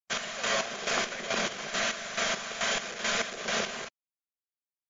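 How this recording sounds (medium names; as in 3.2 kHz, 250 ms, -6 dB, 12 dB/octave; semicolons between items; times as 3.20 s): a quantiser's noise floor 6-bit, dither none; chopped level 2.3 Hz, depth 65%, duty 40%; MP3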